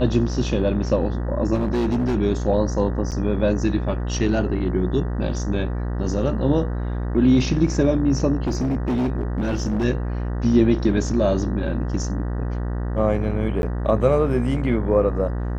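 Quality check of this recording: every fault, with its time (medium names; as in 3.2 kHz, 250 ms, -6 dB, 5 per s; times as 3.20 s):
buzz 60 Hz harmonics 32 -25 dBFS
1.54–2.15 s: clipped -17.5 dBFS
3.11–3.12 s: dropout 8.4 ms
8.47–9.85 s: clipped -18.5 dBFS
13.62–13.63 s: dropout 11 ms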